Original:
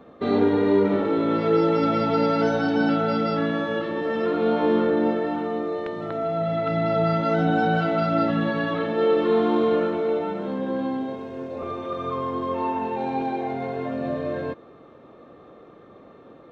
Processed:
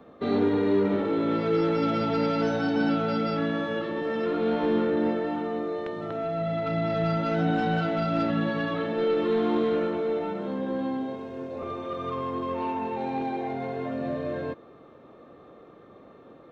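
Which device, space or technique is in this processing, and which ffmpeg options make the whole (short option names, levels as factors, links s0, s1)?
one-band saturation: -filter_complex "[0:a]acrossover=split=380|2100[s0][s1][s2];[s1]asoftclip=type=tanh:threshold=0.0668[s3];[s0][s3][s2]amix=inputs=3:normalize=0,volume=0.75"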